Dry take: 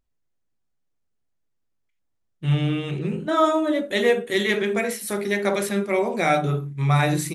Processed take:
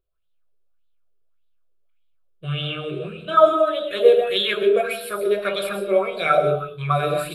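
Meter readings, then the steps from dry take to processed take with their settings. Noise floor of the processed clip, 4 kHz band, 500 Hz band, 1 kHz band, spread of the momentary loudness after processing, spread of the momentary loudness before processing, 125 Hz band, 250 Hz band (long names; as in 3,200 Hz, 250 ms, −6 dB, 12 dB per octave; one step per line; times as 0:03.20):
−62 dBFS, +5.0 dB, +5.0 dB, +3.0 dB, 12 LU, 7 LU, −6.5 dB, −7.0 dB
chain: phaser with its sweep stopped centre 1,300 Hz, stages 8
comb and all-pass reverb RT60 0.49 s, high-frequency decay 0.5×, pre-delay 85 ms, DRR 4 dB
auto-filter bell 1.7 Hz 370–3,700 Hz +14 dB
level −2.5 dB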